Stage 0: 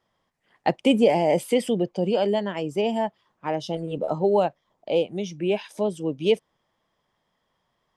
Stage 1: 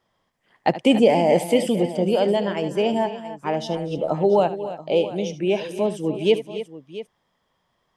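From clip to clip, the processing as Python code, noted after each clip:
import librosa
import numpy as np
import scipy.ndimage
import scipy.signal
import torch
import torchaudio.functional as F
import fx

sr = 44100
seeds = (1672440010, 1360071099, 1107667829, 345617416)

y = fx.echo_multitap(x, sr, ms=(75, 242, 288, 682), db=(-14.5, -19.5, -13.0, -15.5))
y = y * 10.0 ** (2.5 / 20.0)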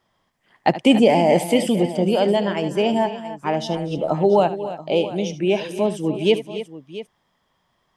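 y = fx.peak_eq(x, sr, hz=490.0, db=-4.0, octaves=0.45)
y = y * 10.0 ** (3.0 / 20.0)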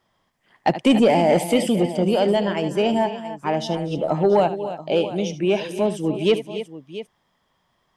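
y = 10.0 ** (-6.5 / 20.0) * np.tanh(x / 10.0 ** (-6.5 / 20.0))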